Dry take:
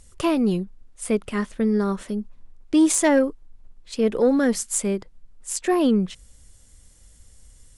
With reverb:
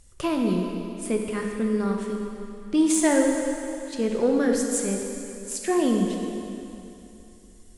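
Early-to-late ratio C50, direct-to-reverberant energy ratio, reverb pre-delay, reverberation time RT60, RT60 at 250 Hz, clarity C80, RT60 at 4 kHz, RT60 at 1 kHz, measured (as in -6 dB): 2.5 dB, 1.0 dB, 7 ms, 2.9 s, 2.8 s, 3.5 dB, 2.7 s, 2.9 s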